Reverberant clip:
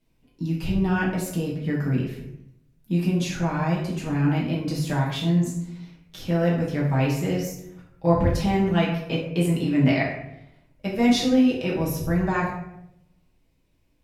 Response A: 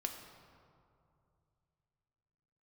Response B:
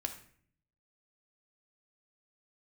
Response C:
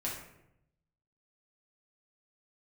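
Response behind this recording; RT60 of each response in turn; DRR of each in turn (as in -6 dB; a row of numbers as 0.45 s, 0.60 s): C; 2.5 s, 0.55 s, 0.80 s; 3.0 dB, 4.5 dB, -6.0 dB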